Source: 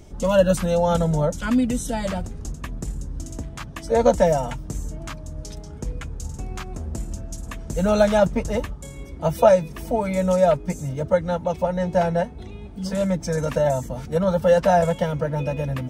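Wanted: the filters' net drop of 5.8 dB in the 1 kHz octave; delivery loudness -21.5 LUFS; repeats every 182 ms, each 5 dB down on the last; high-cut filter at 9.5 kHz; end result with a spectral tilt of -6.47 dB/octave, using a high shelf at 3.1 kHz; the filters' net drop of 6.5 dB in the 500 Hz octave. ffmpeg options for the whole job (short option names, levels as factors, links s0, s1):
-af "lowpass=9500,equalizer=f=500:t=o:g=-6,equalizer=f=1000:t=o:g=-4.5,highshelf=f=3100:g=-8,aecho=1:1:182|364|546|728|910|1092|1274:0.562|0.315|0.176|0.0988|0.0553|0.031|0.0173,volume=1.5"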